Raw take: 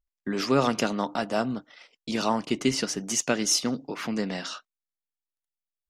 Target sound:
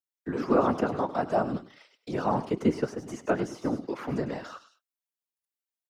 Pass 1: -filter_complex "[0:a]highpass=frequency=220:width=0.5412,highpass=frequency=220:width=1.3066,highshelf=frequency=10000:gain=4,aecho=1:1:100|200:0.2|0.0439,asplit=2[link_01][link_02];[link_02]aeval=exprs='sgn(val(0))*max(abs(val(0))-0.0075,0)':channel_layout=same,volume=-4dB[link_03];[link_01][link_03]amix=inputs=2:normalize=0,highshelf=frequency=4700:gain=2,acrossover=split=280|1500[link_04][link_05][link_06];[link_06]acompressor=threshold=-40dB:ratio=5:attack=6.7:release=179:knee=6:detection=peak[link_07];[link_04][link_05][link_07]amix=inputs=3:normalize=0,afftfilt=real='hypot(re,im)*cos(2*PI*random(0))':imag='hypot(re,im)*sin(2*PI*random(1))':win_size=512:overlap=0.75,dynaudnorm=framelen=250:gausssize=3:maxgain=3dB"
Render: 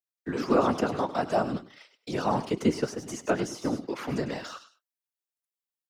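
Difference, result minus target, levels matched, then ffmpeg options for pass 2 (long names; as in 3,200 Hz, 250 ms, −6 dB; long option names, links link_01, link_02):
downward compressor: peak gain reduction −9 dB
-filter_complex "[0:a]highpass=frequency=220:width=0.5412,highpass=frequency=220:width=1.3066,highshelf=frequency=10000:gain=4,aecho=1:1:100|200:0.2|0.0439,asplit=2[link_01][link_02];[link_02]aeval=exprs='sgn(val(0))*max(abs(val(0))-0.0075,0)':channel_layout=same,volume=-4dB[link_03];[link_01][link_03]amix=inputs=2:normalize=0,highshelf=frequency=4700:gain=2,acrossover=split=280|1500[link_04][link_05][link_06];[link_06]acompressor=threshold=-51dB:ratio=5:attack=6.7:release=179:knee=6:detection=peak[link_07];[link_04][link_05][link_07]amix=inputs=3:normalize=0,afftfilt=real='hypot(re,im)*cos(2*PI*random(0))':imag='hypot(re,im)*sin(2*PI*random(1))':win_size=512:overlap=0.75,dynaudnorm=framelen=250:gausssize=3:maxgain=3dB"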